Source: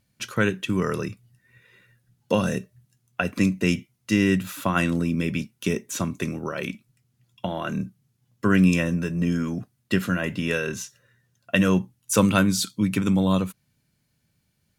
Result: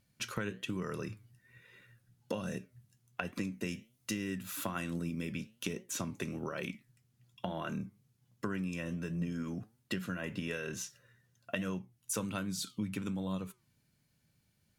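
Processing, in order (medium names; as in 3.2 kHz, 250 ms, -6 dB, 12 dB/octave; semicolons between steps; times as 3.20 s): 3.53–5.33 s: treble shelf 6.5 kHz +6.5 dB; compression 6:1, threshold -31 dBFS, peak gain reduction 16.5 dB; flange 1.2 Hz, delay 5.2 ms, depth 5.2 ms, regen +86%; trim +1 dB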